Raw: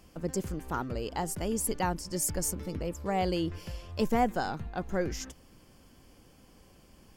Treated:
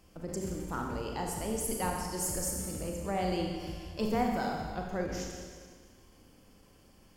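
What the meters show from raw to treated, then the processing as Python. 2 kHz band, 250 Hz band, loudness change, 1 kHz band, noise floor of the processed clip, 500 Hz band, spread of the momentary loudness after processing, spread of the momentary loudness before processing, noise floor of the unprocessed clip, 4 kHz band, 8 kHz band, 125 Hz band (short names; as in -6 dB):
-2.0 dB, -1.5 dB, -2.0 dB, -2.5 dB, -60 dBFS, -2.0 dB, 9 LU, 8 LU, -59 dBFS, -1.5 dB, -1.5 dB, -2.5 dB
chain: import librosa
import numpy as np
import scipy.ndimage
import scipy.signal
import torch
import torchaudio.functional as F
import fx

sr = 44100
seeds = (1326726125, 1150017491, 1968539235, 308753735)

y = fx.rev_schroeder(x, sr, rt60_s=1.7, comb_ms=29, drr_db=0.0)
y = fx.end_taper(y, sr, db_per_s=120.0)
y = y * 10.0 ** (-4.5 / 20.0)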